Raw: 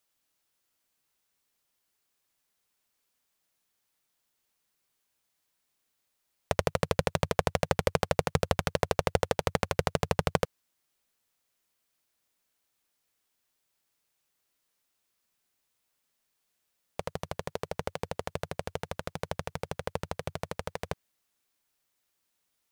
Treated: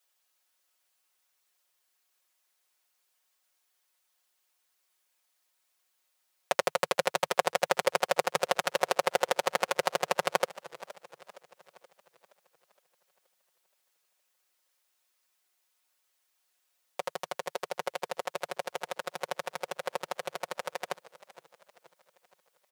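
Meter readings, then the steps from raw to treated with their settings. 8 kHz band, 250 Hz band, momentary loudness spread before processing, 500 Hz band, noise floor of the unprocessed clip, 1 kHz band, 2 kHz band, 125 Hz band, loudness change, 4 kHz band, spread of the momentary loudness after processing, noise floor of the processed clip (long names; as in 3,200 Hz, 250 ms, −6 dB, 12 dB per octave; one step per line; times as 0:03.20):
+3.5 dB, −9.5 dB, 10 LU, 0.0 dB, −79 dBFS, +3.0 dB, +3.5 dB, −18.5 dB, +0.5 dB, +3.0 dB, 11 LU, −76 dBFS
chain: high-pass filter 510 Hz 12 dB per octave
comb filter 5.5 ms, depth 97%
feedback echo with a swinging delay time 471 ms, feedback 49%, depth 170 cents, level −18 dB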